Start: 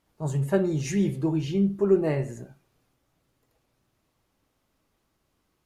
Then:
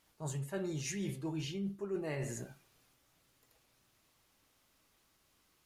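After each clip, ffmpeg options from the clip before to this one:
ffmpeg -i in.wav -af "tiltshelf=frequency=1200:gain=-5.5,areverse,acompressor=threshold=-37dB:ratio=6,areverse,volume=1dB" out.wav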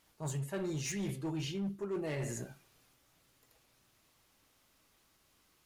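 ffmpeg -i in.wav -af "volume=34dB,asoftclip=hard,volume=-34dB,volume=2dB" out.wav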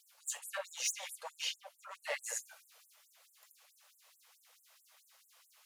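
ffmpeg -i in.wav -af "afftfilt=real='re*gte(b*sr/1024,450*pow(7400/450,0.5+0.5*sin(2*PI*4.6*pts/sr)))':imag='im*gte(b*sr/1024,450*pow(7400/450,0.5+0.5*sin(2*PI*4.6*pts/sr)))':win_size=1024:overlap=0.75,volume=6.5dB" out.wav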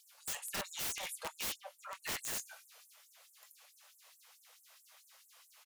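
ffmpeg -i in.wav -filter_complex "[0:a]asplit=2[link_01][link_02];[link_02]adelay=24,volume=-13dB[link_03];[link_01][link_03]amix=inputs=2:normalize=0,aeval=exprs='(mod(59.6*val(0)+1,2)-1)/59.6':channel_layout=same,volume=3dB" out.wav

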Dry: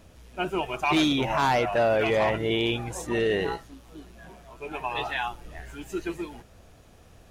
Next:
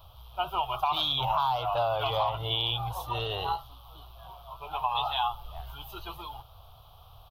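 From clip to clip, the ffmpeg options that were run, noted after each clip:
ffmpeg -i in.wav -af "firequalizer=gain_entry='entry(130,0);entry(200,-27);entry(770,5);entry(1200,7);entry(1800,-24);entry(3200,8);entry(7300,-22);entry(13000,8)':delay=0.05:min_phase=1,acompressor=threshold=-25dB:ratio=6,volume=1dB" out.wav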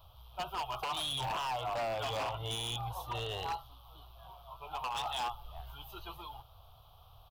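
ffmpeg -i in.wav -af "aeval=exprs='0.0596*(abs(mod(val(0)/0.0596+3,4)-2)-1)':channel_layout=same,volume=-5.5dB" out.wav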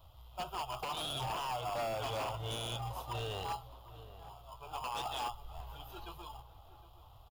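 ffmpeg -i in.wav -filter_complex "[0:a]asplit=2[link_01][link_02];[link_02]acrusher=samples=22:mix=1:aa=0.000001,volume=-5dB[link_03];[link_01][link_03]amix=inputs=2:normalize=0,asplit=2[link_04][link_05];[link_05]adelay=763,lowpass=frequency=1500:poles=1,volume=-15.5dB,asplit=2[link_06][link_07];[link_07]adelay=763,lowpass=frequency=1500:poles=1,volume=0.48,asplit=2[link_08][link_09];[link_09]adelay=763,lowpass=frequency=1500:poles=1,volume=0.48,asplit=2[link_10][link_11];[link_11]adelay=763,lowpass=frequency=1500:poles=1,volume=0.48[link_12];[link_04][link_06][link_08][link_10][link_12]amix=inputs=5:normalize=0,volume=-4dB" out.wav

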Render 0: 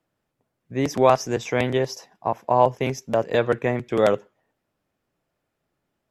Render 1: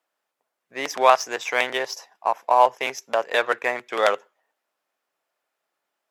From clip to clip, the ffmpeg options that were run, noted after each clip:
ffmpeg -i in.wav -filter_complex "[0:a]asplit=2[link_01][link_02];[link_02]adynamicsmooth=sensitivity=7.5:basefreq=1300,volume=-2dB[link_03];[link_01][link_03]amix=inputs=2:normalize=0,highpass=930,volume=2dB" out.wav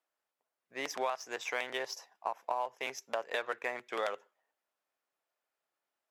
ffmpeg -i in.wav -af "acompressor=threshold=-21dB:ratio=8,volume=-9dB" out.wav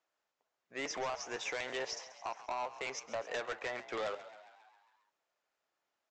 ffmpeg -i in.wav -filter_complex "[0:a]aresample=16000,asoftclip=type=tanh:threshold=-35.5dB,aresample=44100,asplit=8[link_01][link_02][link_03][link_04][link_05][link_06][link_07][link_08];[link_02]adelay=135,afreqshift=62,volume=-15dB[link_09];[link_03]adelay=270,afreqshift=124,volume=-19.2dB[link_10];[link_04]adelay=405,afreqshift=186,volume=-23.3dB[link_11];[link_05]adelay=540,afreqshift=248,volume=-27.5dB[link_12];[link_06]adelay=675,afreqshift=310,volume=-31.6dB[link_13];[link_07]adelay=810,afreqshift=372,volume=-35.8dB[link_14];[link_08]adelay=945,afreqshift=434,volume=-39.9dB[link_15];[link_01][link_09][link_10][link_11][link_12][link_13][link_14][link_15]amix=inputs=8:normalize=0,volume=3dB" out.wav

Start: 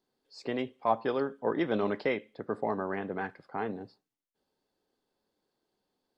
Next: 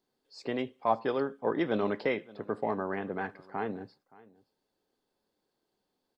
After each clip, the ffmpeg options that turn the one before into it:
ffmpeg -i in.wav -af "aecho=1:1:572:0.075" out.wav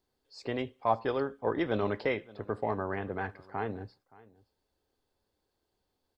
ffmpeg -i in.wav -af "lowshelf=frequency=120:width_type=q:width=1.5:gain=11" out.wav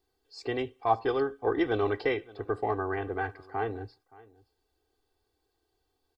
ffmpeg -i in.wav -af "aecho=1:1:2.6:0.8" out.wav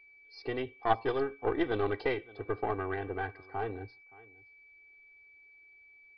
ffmpeg -i in.wav -af "aeval=exprs='val(0)+0.00251*sin(2*PI*2300*n/s)':channel_layout=same,aeval=exprs='0.251*(cos(1*acos(clip(val(0)/0.251,-1,1)))-cos(1*PI/2))+0.0178*(cos(3*acos(clip(val(0)/0.251,-1,1)))-cos(3*PI/2))+0.0316*(cos(4*acos(clip(val(0)/0.251,-1,1)))-cos(4*PI/2))':channel_layout=same,aresample=11025,aresample=44100,volume=-1.5dB" out.wav

